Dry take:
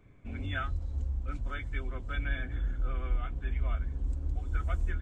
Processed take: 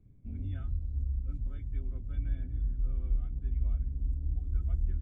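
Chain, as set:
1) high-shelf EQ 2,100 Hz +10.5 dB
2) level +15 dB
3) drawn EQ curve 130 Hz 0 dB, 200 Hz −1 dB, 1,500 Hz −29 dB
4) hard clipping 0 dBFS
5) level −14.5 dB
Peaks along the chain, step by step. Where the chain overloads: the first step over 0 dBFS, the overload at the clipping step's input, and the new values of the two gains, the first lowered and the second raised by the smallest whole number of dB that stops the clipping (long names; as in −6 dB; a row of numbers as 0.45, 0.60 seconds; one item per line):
−18.0, −3.0, −5.0, −5.0, −19.5 dBFS
no step passes full scale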